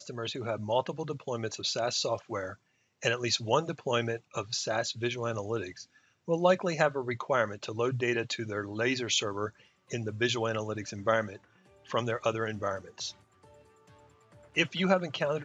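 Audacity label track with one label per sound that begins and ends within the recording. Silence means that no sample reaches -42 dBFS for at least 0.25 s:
3.020000	5.830000	sound
6.280000	9.490000	sound
9.910000	11.370000	sound
11.900000	13.110000	sound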